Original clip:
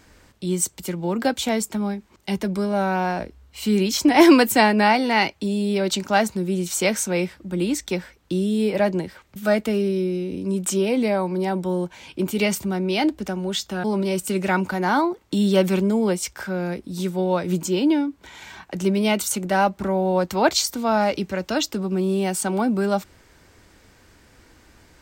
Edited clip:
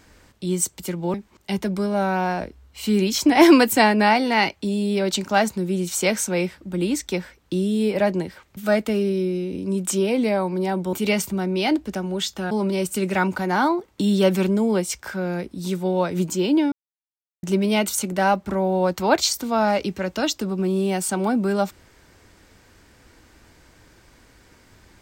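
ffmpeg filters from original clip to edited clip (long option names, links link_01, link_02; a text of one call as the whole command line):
ffmpeg -i in.wav -filter_complex "[0:a]asplit=5[link_01][link_02][link_03][link_04][link_05];[link_01]atrim=end=1.142[link_06];[link_02]atrim=start=1.928:end=11.722[link_07];[link_03]atrim=start=12.258:end=18.05,asetpts=PTS-STARTPTS,afade=type=out:start_time=5.788:duration=0.004:curve=hsin[link_08];[link_04]atrim=start=18.05:end=18.76,asetpts=PTS-STARTPTS,volume=0[link_09];[link_05]atrim=start=18.76,asetpts=PTS-STARTPTS,afade=type=in:duration=0.004:curve=hsin[link_10];[link_06][link_07]acrossfade=duration=0.004:curve1=hsin:curve2=hsin[link_11];[link_08][link_09][link_10]concat=n=3:v=0:a=1[link_12];[link_11][link_12]acrossfade=duration=0.004:curve1=hsin:curve2=hsin" out.wav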